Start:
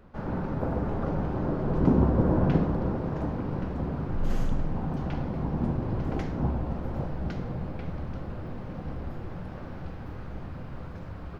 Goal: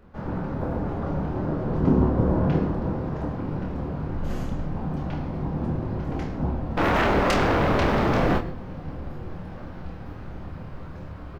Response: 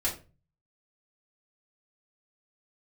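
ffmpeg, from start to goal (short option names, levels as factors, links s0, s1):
-filter_complex "[0:a]asettb=1/sr,asplit=3[s0][s1][s2];[s0]atrim=end=6.774[s3];[s1]atrim=start=6.77:end=8.38,asetpts=PTS-STARTPTS,afade=t=in:d=0.004:c=qsin,afade=t=out:st=1.606:d=0.004:c=qsin,aeval=exprs='0.112*sin(PI/2*8.91*val(0)/0.112)':c=same[s4];[s2]atrim=start=8.376[s5];[s3][s4]acrossfade=d=0.004:c1=hsin:c2=qsin[s6];[s6][s5]acrossfade=d=0.004:c1=qsin:c2=hsin,aecho=1:1:27|52:0.562|0.188,asplit=2[s7][s8];[1:a]atrim=start_sample=2205,adelay=103[s9];[s8][s9]afir=irnorm=-1:irlink=0,volume=0.0631[s10];[s7][s10]amix=inputs=2:normalize=0"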